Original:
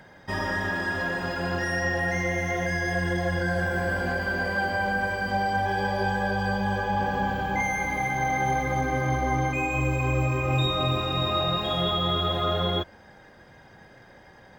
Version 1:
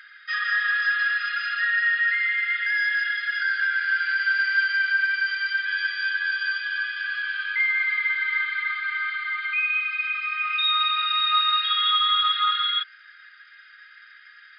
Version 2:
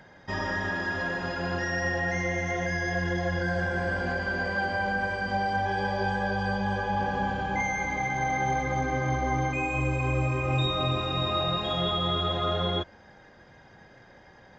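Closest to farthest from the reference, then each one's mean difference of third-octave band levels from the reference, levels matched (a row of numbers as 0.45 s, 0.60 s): 2, 1; 2.0 dB, 23.0 dB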